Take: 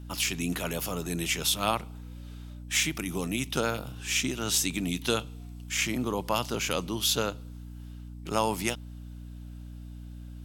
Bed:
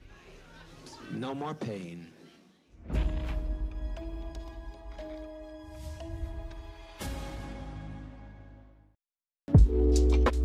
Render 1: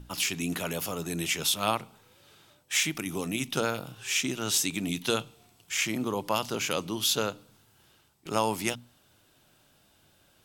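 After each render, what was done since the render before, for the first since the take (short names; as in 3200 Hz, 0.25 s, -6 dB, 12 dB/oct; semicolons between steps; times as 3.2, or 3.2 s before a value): notches 60/120/180/240/300 Hz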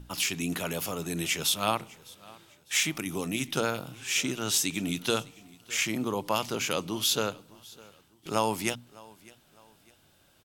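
feedback echo 0.605 s, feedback 37%, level -23 dB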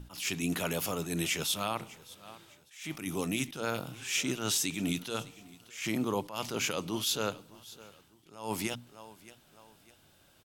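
limiter -19 dBFS, peak gain reduction 10.5 dB; attack slew limiter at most 120 dB/s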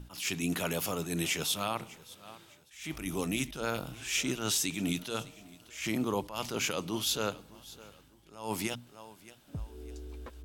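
add bed -21 dB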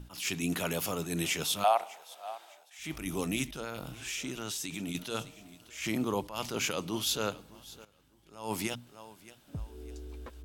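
1.64–2.79 resonant high-pass 710 Hz, resonance Q 6.7; 3.56–4.95 compressor, threshold -33 dBFS; 7.85–8.38 fade in, from -16 dB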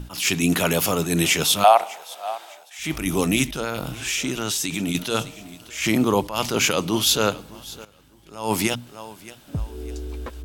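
gain +12 dB; limiter -3 dBFS, peak gain reduction 0.5 dB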